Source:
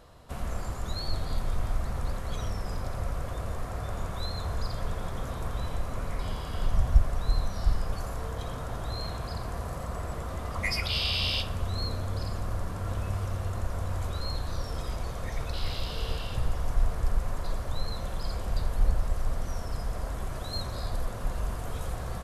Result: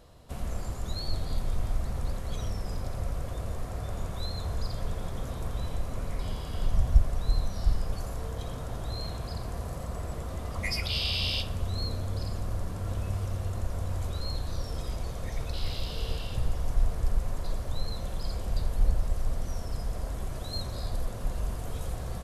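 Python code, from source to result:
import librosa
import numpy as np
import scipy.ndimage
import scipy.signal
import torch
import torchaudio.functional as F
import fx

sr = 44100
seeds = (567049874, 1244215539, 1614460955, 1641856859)

y = fx.peak_eq(x, sr, hz=1300.0, db=-6.0, octaves=1.6)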